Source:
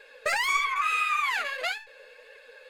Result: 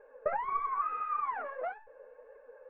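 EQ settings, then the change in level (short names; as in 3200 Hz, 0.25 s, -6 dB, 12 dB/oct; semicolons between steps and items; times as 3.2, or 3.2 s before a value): LPF 1100 Hz 24 dB/oct; 0.0 dB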